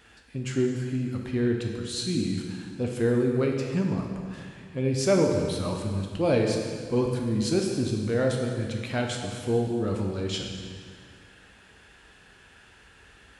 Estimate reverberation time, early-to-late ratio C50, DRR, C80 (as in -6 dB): 2.0 s, 3.0 dB, 0.5 dB, 4.5 dB